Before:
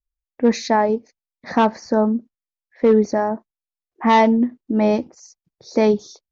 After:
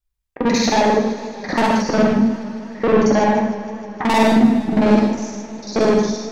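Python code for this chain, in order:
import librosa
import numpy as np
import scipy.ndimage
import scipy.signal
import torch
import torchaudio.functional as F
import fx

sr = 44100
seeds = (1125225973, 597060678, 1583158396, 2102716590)

p1 = fx.local_reverse(x, sr, ms=45.0)
p2 = fx.rider(p1, sr, range_db=10, speed_s=0.5)
p3 = p1 + (p2 * librosa.db_to_amplitude(2.0))
p4 = 10.0 ** (-12.0 / 20.0) * np.tanh(p3 / 10.0 ** (-12.0 / 20.0))
p5 = p4 + fx.echo_single(p4, sr, ms=286, db=-18.5, dry=0)
p6 = fx.rev_gated(p5, sr, seeds[0], gate_ms=180, shape='flat', drr_db=0.0)
p7 = fx.echo_warbled(p6, sr, ms=154, feedback_pct=79, rate_hz=2.8, cents=82, wet_db=-17.0)
y = p7 * librosa.db_to_amplitude(-1.0)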